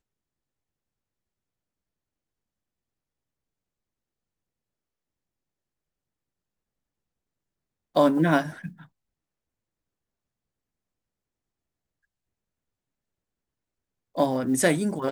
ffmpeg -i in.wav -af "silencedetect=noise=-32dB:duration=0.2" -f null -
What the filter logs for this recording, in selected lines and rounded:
silence_start: 0.00
silence_end: 7.96 | silence_duration: 7.96
silence_start: 8.69
silence_end: 14.17 | silence_duration: 5.48